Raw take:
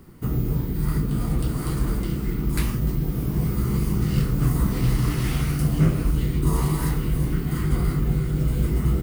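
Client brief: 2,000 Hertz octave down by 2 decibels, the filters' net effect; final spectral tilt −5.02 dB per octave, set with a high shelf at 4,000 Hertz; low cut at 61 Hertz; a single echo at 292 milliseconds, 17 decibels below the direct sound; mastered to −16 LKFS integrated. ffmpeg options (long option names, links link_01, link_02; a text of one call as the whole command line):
ffmpeg -i in.wav -af "highpass=61,equalizer=frequency=2000:width_type=o:gain=-4,highshelf=frequency=4000:gain=6.5,aecho=1:1:292:0.141,volume=8.5dB" out.wav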